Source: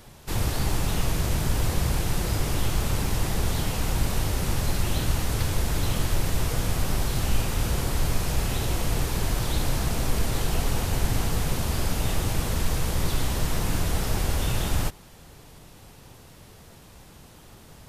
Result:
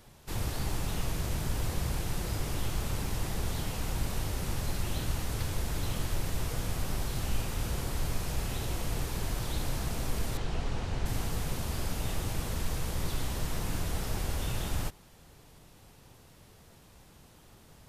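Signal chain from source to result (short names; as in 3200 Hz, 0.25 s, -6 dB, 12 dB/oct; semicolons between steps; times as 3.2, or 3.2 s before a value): 10.37–11.06 air absorption 98 m; gain -7.5 dB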